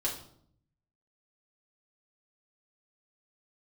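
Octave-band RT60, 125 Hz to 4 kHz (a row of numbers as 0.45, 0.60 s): 1.1, 0.90, 0.70, 0.60, 0.45, 0.50 s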